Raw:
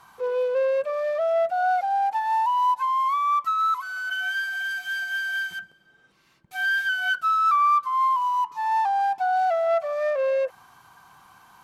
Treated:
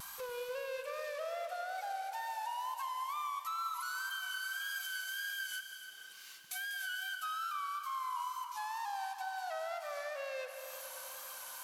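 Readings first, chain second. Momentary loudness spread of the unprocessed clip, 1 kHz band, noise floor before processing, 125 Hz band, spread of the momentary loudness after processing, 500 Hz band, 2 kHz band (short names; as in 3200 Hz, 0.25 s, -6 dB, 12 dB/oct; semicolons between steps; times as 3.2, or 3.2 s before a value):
7 LU, -17.0 dB, -60 dBFS, n/a, 6 LU, -18.0 dB, -13.5 dB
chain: differentiator; limiter -36.5 dBFS, peak gain reduction 9 dB; compressor 3:1, threshold -60 dBFS, peak gain reduction 14.5 dB; wow and flutter 58 cents; multi-head echo 97 ms, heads second and third, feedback 44%, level -13 dB; Schroeder reverb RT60 3.5 s, combs from 33 ms, DRR 10 dB; gain +16 dB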